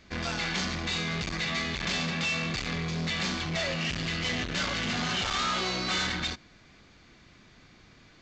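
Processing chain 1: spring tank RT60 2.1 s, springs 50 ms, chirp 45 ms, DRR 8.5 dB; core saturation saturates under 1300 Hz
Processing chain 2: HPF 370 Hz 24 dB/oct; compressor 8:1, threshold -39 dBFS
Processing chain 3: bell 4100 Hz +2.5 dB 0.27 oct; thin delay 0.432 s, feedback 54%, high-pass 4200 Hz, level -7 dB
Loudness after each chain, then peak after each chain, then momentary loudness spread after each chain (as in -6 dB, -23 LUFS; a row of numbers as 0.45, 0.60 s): -34.0, -40.5, -29.0 LUFS; -20.5, -28.0, -19.5 dBFS; 6, 18, 13 LU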